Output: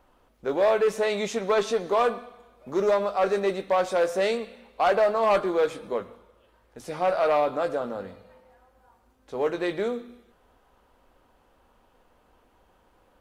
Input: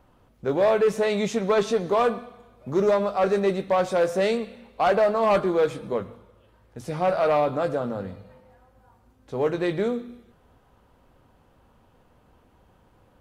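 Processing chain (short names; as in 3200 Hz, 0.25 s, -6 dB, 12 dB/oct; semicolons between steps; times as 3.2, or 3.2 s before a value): bell 120 Hz -13.5 dB 1.7 oct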